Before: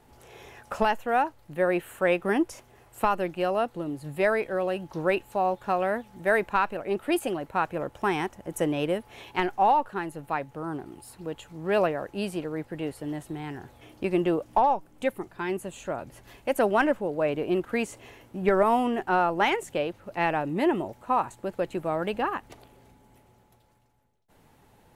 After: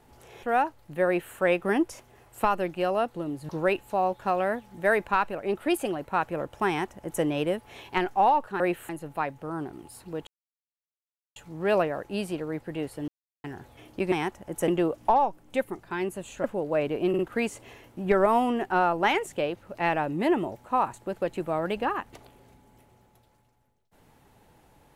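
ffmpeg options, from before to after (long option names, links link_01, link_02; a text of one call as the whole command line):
ffmpeg -i in.wav -filter_complex "[0:a]asplit=13[link_01][link_02][link_03][link_04][link_05][link_06][link_07][link_08][link_09][link_10][link_11][link_12][link_13];[link_01]atrim=end=0.432[link_14];[link_02]atrim=start=1.028:end=4.092[link_15];[link_03]atrim=start=4.908:end=10.022[link_16];[link_04]atrim=start=1.658:end=1.952[link_17];[link_05]atrim=start=10.018:end=11.4,asetpts=PTS-STARTPTS,afade=type=out:start_time=1.378:duration=0.004:curve=hsin,apad=pad_dur=1.09[link_18];[link_06]atrim=start=11.4:end=13.12,asetpts=PTS-STARTPTS,afade=type=in:duration=0.004:curve=hsin,afade=type=out:start_time=1.716:duration=0.004:curve=hsin[link_19];[link_07]atrim=start=13.12:end=13.48,asetpts=PTS-STARTPTS,volume=0[link_20];[link_08]atrim=start=13.48:end=14.162,asetpts=PTS-STARTPTS,afade=type=in:duration=0.004:curve=hsin[link_21];[link_09]atrim=start=8.098:end=8.662[link_22];[link_10]atrim=start=14.158:end=15.922[link_23];[link_11]atrim=start=16.908:end=17.612[link_24];[link_12]atrim=start=17.558:end=17.612[link_25];[link_13]atrim=start=17.558[link_26];[link_14][link_15]acrossfade=duration=0.004:curve1=hsin:curve2=hsin[link_27];[link_27][link_16]acrossfade=duration=0.004:curve1=hsin:curve2=hsin[link_28];[link_28][link_17]acrossfade=duration=0.004:curve1=hsin:curve2=hsin[link_29];[link_18][link_19][link_20][link_21]concat=n=4:v=0:a=1[link_30];[link_29][link_30]acrossfade=duration=0.004:curve1=hsin:curve2=hsin[link_31];[link_31][link_22]acrossfade=duration=0.004:curve1=hsin:curve2=hsin[link_32];[link_32][link_23]acrossfade=duration=0.004:curve1=hsin:curve2=hsin[link_33];[link_33][link_24]acrossfade=duration=0.004:curve1=hsin:curve2=hsin[link_34];[link_34][link_25]acrossfade=duration=0.004:curve1=hsin:curve2=hsin[link_35];[link_35][link_26]acrossfade=duration=0.004:curve1=hsin:curve2=hsin" out.wav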